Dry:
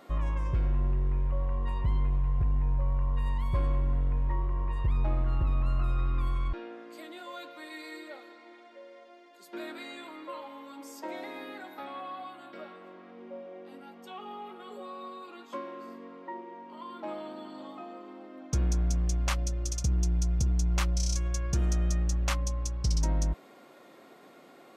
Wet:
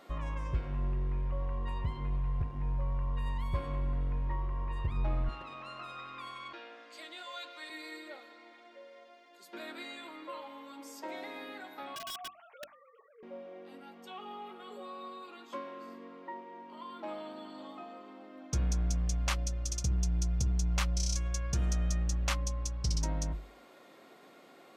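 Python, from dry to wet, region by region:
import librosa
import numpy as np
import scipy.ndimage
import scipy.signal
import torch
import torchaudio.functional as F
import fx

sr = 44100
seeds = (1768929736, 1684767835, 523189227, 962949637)

y = fx.chain(x, sr, fx.bandpass_edges(low_hz=280.0, high_hz=6800.0),
    fx.tilt_eq(slope=2.5), at=(5.29, 7.7))
y = fx.chain(y, sr, fx.sine_speech(),
    fx.notch_comb(f0_hz=250.0),
    fx.overflow_wrap(gain_db=35.5), at=(11.95, 13.23))
y = fx.peak_eq(y, sr, hz=3600.0, db=3.0, octaves=2.2)
y = fx.hum_notches(y, sr, base_hz=50, count=7)
y = y * librosa.db_to_amplitude(-3.0)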